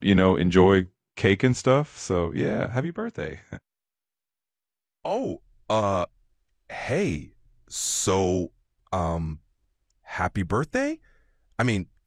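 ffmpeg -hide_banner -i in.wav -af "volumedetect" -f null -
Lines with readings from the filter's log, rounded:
mean_volume: -25.8 dB
max_volume: -5.9 dB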